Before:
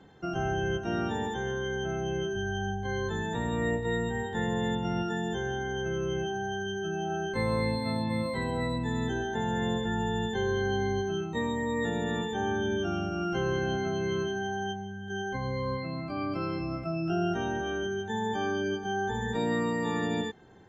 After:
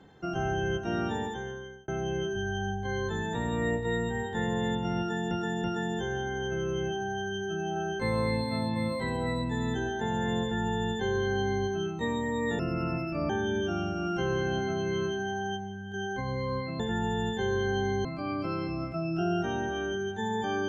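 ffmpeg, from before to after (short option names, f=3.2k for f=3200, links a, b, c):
-filter_complex "[0:a]asplit=8[a][b][c][d][e][f][g][h];[a]atrim=end=1.88,asetpts=PTS-STARTPTS,afade=t=out:st=1.14:d=0.74[i];[b]atrim=start=1.88:end=5.312,asetpts=PTS-STARTPTS,afade=t=in:d=0.004:c=hsin[j];[c]atrim=start=4.978:end=5.312[k];[d]atrim=start=4.978:end=11.934[l];[e]atrim=start=11.93:end=12.46,asetpts=PTS-STARTPTS,asetrate=33075,aresample=44100[m];[f]atrim=start=12.456:end=15.962[n];[g]atrim=start=9.758:end=11.012[o];[h]atrim=start=15.958[p];[i][j]concat=n=2:v=0:a=1[q];[q][k]acrossfade=d=0.004:c1=hsin:c2=hsin[r];[r][l]acrossfade=d=0.004:c1=hsin:c2=hsin[s];[s][m]acrossfade=d=0.004:c1=hsin:c2=hsin[t];[t][n]acrossfade=d=0.004:c1=hsin:c2=hsin[u];[u][o]acrossfade=d=0.004:c1=hsin:c2=hsin[v];[v][p]acrossfade=d=0.004:c1=hsin:c2=hsin"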